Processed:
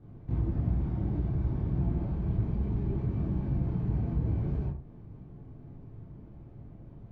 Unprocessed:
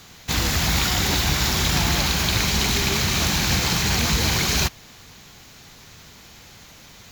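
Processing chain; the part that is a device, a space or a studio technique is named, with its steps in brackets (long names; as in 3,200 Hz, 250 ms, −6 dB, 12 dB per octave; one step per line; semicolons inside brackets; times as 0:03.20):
television next door (downward compressor 4 to 1, threshold −28 dBFS, peak gain reduction 10 dB; low-pass filter 320 Hz 12 dB per octave; convolution reverb RT60 0.40 s, pre-delay 19 ms, DRR −6.5 dB)
level −3 dB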